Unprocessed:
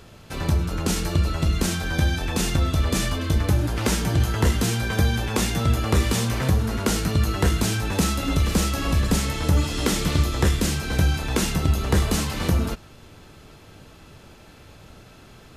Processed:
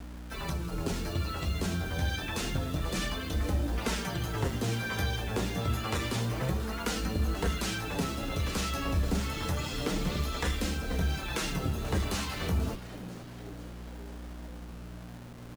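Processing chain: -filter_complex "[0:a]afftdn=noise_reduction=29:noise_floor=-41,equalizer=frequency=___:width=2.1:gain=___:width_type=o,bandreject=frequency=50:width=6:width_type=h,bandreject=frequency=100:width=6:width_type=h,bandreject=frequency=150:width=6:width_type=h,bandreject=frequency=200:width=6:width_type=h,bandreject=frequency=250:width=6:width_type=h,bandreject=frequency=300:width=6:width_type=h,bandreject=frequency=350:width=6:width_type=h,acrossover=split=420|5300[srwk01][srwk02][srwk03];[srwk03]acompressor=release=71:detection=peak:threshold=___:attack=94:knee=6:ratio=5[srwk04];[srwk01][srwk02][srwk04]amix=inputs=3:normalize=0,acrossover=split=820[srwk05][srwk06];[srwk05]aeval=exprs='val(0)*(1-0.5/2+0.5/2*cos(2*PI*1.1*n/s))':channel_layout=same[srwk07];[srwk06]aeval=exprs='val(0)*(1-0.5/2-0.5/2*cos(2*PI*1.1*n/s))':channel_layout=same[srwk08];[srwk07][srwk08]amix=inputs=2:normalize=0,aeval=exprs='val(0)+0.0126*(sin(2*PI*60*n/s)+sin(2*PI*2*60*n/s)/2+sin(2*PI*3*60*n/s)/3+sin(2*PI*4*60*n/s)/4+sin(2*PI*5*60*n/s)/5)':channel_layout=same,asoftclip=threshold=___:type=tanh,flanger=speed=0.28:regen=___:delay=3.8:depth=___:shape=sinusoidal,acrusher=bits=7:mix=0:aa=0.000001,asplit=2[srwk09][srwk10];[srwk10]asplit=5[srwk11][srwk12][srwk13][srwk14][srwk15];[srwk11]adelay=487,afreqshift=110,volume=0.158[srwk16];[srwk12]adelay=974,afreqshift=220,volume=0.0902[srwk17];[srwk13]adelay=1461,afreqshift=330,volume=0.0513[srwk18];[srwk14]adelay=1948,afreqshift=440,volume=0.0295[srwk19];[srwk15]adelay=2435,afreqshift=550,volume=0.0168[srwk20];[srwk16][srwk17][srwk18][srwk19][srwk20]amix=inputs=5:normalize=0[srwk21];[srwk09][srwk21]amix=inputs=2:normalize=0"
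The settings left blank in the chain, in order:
150, -3, 0.00501, 0.133, -20, 6.9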